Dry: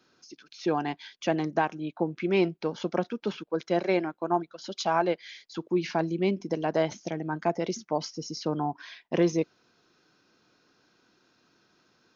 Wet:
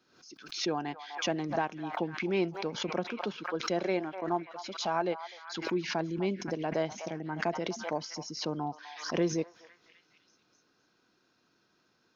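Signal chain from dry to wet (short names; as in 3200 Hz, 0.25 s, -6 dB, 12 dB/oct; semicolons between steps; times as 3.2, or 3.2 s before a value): delay with a stepping band-pass 0.251 s, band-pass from 1000 Hz, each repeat 0.7 oct, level -10.5 dB; backwards sustainer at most 89 dB/s; gain -5.5 dB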